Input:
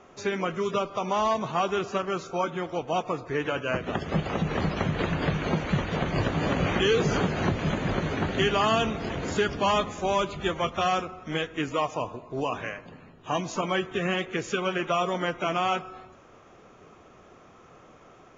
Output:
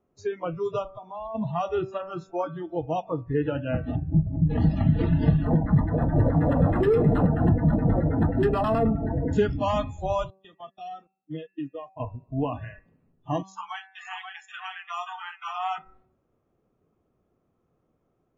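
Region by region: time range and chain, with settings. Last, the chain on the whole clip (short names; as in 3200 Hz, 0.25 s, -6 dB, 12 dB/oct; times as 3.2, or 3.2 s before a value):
0.91–1.35 high shelf 4300 Hz -5.5 dB + compressor 8:1, threshold -29 dBFS
3.95–4.5 median filter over 41 samples + Gaussian blur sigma 2.7 samples + notch comb 230 Hz
5.45–9.33 LFO low-pass saw down 9.4 Hz 450–2100 Hz + hard clip -20.5 dBFS
10.3–12 HPF 140 Hz 24 dB/oct + gate -33 dBFS, range -28 dB + compressor 2.5:1, threshold -34 dBFS
13.42–15.78 gate -38 dBFS, range -14 dB + brick-wall FIR high-pass 710 Hz + echo 0.532 s -4 dB
whole clip: spectral noise reduction 23 dB; tilt shelf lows +9.5 dB, about 690 Hz; de-hum 191.4 Hz, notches 14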